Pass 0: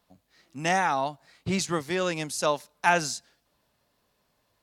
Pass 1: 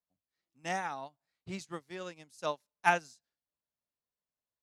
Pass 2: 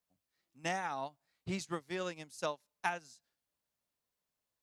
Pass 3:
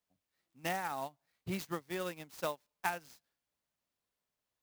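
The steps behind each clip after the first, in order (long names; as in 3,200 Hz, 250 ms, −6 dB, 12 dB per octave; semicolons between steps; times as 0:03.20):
expander for the loud parts 2.5 to 1, over −35 dBFS; level −2.5 dB
downward compressor 8 to 1, threshold −38 dBFS, peak gain reduction 18 dB; level +5.5 dB
converter with an unsteady clock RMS 0.029 ms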